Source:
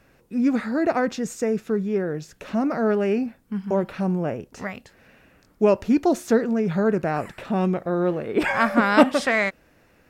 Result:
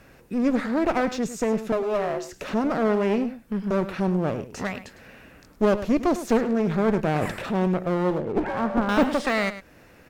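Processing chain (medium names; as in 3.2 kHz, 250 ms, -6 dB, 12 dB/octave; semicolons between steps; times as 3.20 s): 7.04–7.65 s: transient shaper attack -5 dB, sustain +9 dB; de-esser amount 85%; 8.18–8.89 s: Bessel low-pass 740 Hz, order 2; in parallel at 0 dB: compression, threshold -36 dBFS, peak gain reduction 22.5 dB; 1.72–2.32 s: on the sum: frequency shift +210 Hz; one-sided clip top -28 dBFS; on a send: delay 104 ms -13 dB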